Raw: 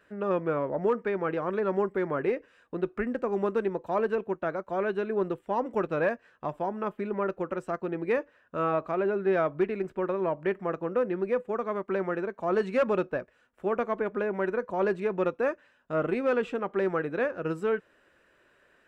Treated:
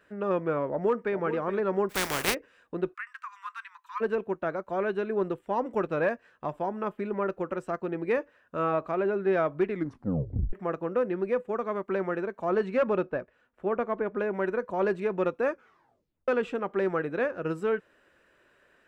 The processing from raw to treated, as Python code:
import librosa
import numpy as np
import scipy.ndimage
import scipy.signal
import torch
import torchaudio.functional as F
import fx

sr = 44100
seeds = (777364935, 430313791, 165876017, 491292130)

y = fx.echo_throw(x, sr, start_s=0.69, length_s=0.49, ms=420, feedback_pct=15, wet_db=-11.5)
y = fx.spec_flatten(y, sr, power=0.27, at=(1.89, 2.33), fade=0.02)
y = fx.steep_highpass(y, sr, hz=1000.0, slope=96, at=(2.93, 4.0), fade=0.02)
y = fx.lowpass(y, sr, hz=fx.line((12.5, 3200.0), (14.18, 2100.0)), slope=6, at=(12.5, 14.18), fade=0.02)
y = fx.edit(y, sr, fx.tape_stop(start_s=9.69, length_s=0.84),
    fx.tape_stop(start_s=15.51, length_s=0.77), tone=tone)